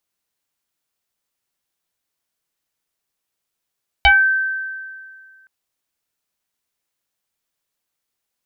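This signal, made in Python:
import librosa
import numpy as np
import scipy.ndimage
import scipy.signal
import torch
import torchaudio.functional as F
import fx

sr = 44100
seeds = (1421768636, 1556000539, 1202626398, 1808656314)

y = fx.fm2(sr, length_s=1.42, level_db=-6.5, carrier_hz=1550.0, ratio=0.48, index=2.8, index_s=0.26, decay_s=2.02, shape='exponential')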